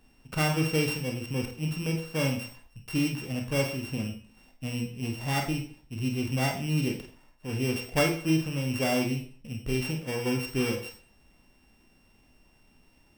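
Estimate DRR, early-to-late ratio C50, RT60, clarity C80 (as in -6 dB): 2.0 dB, 7.5 dB, 0.45 s, 11.5 dB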